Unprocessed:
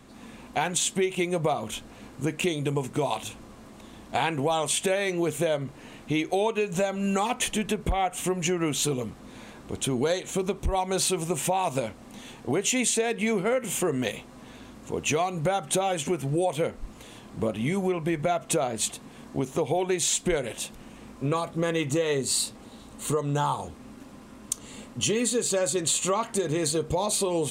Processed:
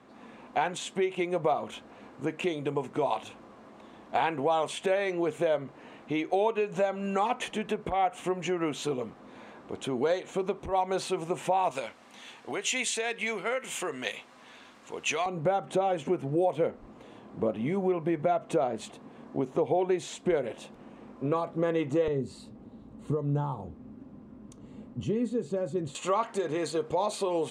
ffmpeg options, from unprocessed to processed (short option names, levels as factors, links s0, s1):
-af "asetnsamples=n=441:p=0,asendcmd='11.71 bandpass f 2000;15.26 bandpass f 490;22.08 bandpass f 160;25.95 bandpass f 890',bandpass=f=770:t=q:w=0.53:csg=0"